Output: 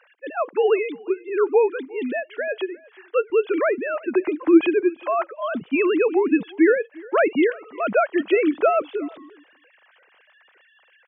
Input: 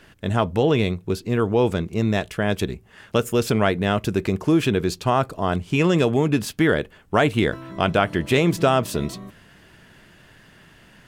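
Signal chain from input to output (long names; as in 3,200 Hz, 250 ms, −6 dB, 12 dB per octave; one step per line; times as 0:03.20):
three sine waves on the formant tracks
high-pass filter 310 Hz 24 dB per octave, from 0:03.30 91 Hz
single-tap delay 355 ms −23.5 dB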